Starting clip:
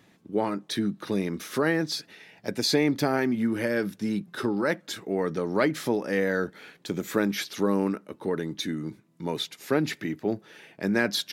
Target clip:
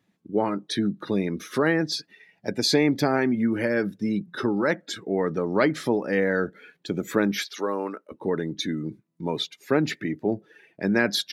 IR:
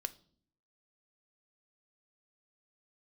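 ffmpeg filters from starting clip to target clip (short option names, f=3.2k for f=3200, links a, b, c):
-filter_complex "[0:a]asettb=1/sr,asplit=3[a][b][c];[a]atrim=end=7.394[d];[b]atrim=start=7.39:end=8.12,asetpts=PTS-STARTPTS,afade=t=in:d=0.004:c=qsin,afade=t=out:st=0.726:d=0.004:c=qsin,highpass=470[e];[c]atrim=start=8.116[f];[d][e]acrossfade=d=0.004:c1=hsin:c2=qsin[g];[g][f]acrossfade=d=0.004:c1=qsin:c2=hsin,afftdn=nr=16:nf=-43,volume=2.5dB"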